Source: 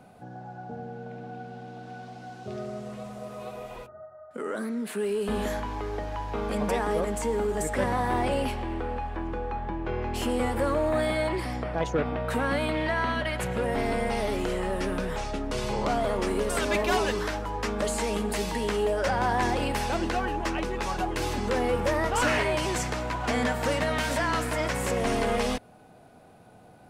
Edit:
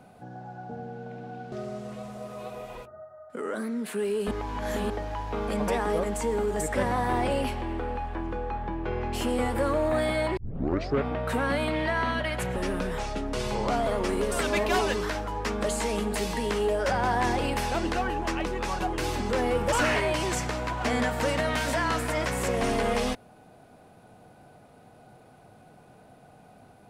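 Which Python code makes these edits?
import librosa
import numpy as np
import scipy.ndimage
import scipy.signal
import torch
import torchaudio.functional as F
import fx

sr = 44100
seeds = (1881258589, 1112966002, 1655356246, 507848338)

y = fx.edit(x, sr, fx.cut(start_s=1.52, length_s=1.01),
    fx.reverse_span(start_s=5.32, length_s=0.59),
    fx.tape_start(start_s=11.38, length_s=0.66),
    fx.cut(start_s=13.57, length_s=1.17),
    fx.cut(start_s=21.9, length_s=0.25), tone=tone)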